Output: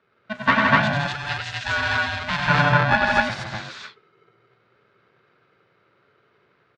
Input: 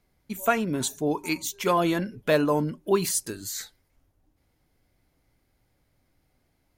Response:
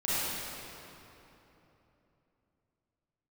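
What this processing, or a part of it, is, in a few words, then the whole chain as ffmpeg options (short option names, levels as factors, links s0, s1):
ring modulator pedal into a guitar cabinet: -filter_complex "[0:a]aeval=exprs='val(0)*sgn(sin(2*PI*430*n/s))':c=same,highpass=110,equalizer=f=120:t=q:w=4:g=7,equalizer=f=300:t=q:w=4:g=-9,equalizer=f=490:t=q:w=4:g=-6,equalizer=f=750:t=q:w=4:g=-5,equalizer=f=1500:t=q:w=4:g=7,equalizer=f=3000:t=q:w=4:g=-4,lowpass=f=3600:w=0.5412,lowpass=f=3600:w=1.3066,asettb=1/sr,asplit=3[s0][s1][s2];[s0]atrim=end=0.934[s3];[s1]atrim=start=0.93:end=2.48,asetpts=PTS-STARTPTS,afade=t=in:d=0.004:c=qsin,afade=t=out:st=1.546:d=0.004:c=qsin,equalizer=f=125:t=o:w=1:g=-12,equalizer=f=250:t=o:w=1:g=-9,equalizer=f=500:t=o:w=1:g=-7,equalizer=f=1000:t=o:w=1:g=-8,equalizer=f=2000:t=o:w=1:g=-5,equalizer=f=8000:t=o:w=1:g=6[s4];[s2]atrim=start=2.476[s5];[s3][s4]acrossfade=d=0.004:c1=hsin:c2=qsin[s6];[s6][s5]acrossfade=d=0.004:c1=qsin:c2=hsin,aecho=1:1:96.21|163.3|247.8:0.631|0.631|1,volume=1.68"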